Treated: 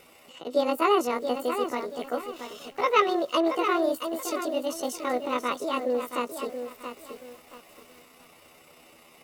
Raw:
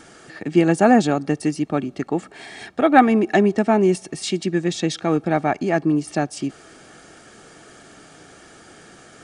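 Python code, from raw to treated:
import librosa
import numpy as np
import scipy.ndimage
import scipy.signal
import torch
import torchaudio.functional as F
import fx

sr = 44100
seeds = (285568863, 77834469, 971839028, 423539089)

y = fx.pitch_heads(x, sr, semitones=8.5)
y = fx.echo_crushed(y, sr, ms=677, feedback_pct=35, bits=7, wet_db=-8.0)
y = F.gain(torch.from_numpy(y), -7.5).numpy()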